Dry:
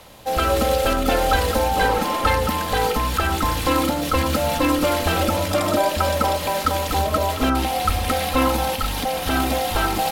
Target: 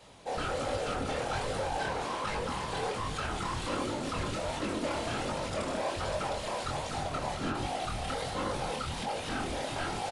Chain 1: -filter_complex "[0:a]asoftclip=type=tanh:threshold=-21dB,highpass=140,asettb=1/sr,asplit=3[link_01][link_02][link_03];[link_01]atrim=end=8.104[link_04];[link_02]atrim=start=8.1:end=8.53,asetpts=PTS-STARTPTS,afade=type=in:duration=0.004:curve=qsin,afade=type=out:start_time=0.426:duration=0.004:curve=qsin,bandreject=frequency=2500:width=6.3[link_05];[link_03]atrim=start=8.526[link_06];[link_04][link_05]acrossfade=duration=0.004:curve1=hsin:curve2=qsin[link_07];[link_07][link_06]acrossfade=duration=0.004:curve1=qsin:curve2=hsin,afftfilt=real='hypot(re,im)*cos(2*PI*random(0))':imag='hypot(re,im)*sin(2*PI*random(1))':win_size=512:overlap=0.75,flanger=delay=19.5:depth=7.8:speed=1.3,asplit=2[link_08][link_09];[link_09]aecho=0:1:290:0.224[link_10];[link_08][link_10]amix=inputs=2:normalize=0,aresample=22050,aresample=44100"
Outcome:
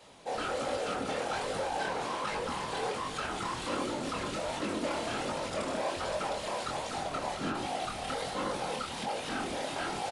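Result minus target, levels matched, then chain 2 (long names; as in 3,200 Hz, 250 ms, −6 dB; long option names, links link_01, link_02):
125 Hz band −6.5 dB
-filter_complex "[0:a]asoftclip=type=tanh:threshold=-21dB,highpass=37,asettb=1/sr,asplit=3[link_01][link_02][link_03];[link_01]atrim=end=8.104[link_04];[link_02]atrim=start=8.1:end=8.53,asetpts=PTS-STARTPTS,afade=type=in:duration=0.004:curve=qsin,afade=type=out:start_time=0.426:duration=0.004:curve=qsin,bandreject=frequency=2500:width=6.3[link_05];[link_03]atrim=start=8.526[link_06];[link_04][link_05]acrossfade=duration=0.004:curve1=hsin:curve2=qsin[link_07];[link_07][link_06]acrossfade=duration=0.004:curve1=qsin:curve2=hsin,afftfilt=real='hypot(re,im)*cos(2*PI*random(0))':imag='hypot(re,im)*sin(2*PI*random(1))':win_size=512:overlap=0.75,flanger=delay=19.5:depth=7.8:speed=1.3,asplit=2[link_08][link_09];[link_09]aecho=0:1:290:0.224[link_10];[link_08][link_10]amix=inputs=2:normalize=0,aresample=22050,aresample=44100"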